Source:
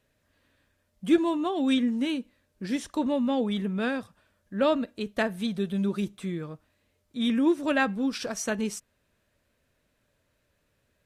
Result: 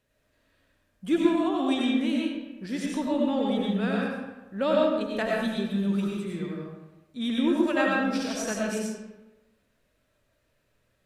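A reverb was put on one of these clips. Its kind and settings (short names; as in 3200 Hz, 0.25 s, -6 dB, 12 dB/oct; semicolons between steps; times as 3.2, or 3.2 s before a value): digital reverb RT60 1.1 s, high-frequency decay 0.65×, pre-delay 55 ms, DRR -3 dB; gain -3.5 dB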